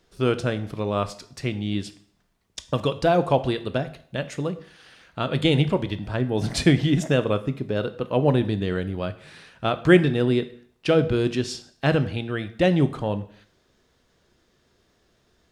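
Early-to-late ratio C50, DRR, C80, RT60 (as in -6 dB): 15.5 dB, 11.0 dB, 19.0 dB, 0.55 s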